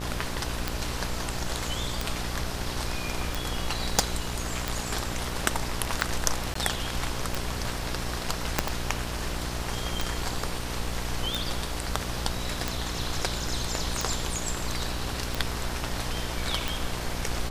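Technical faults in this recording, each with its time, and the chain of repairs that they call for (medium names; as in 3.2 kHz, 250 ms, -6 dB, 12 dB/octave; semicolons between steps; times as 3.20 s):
buzz 60 Hz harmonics 19 -35 dBFS
tick 45 rpm
3.99 s: pop
6.54–6.55 s: dropout 14 ms
8.59 s: pop -5 dBFS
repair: de-click; de-hum 60 Hz, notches 19; interpolate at 6.54 s, 14 ms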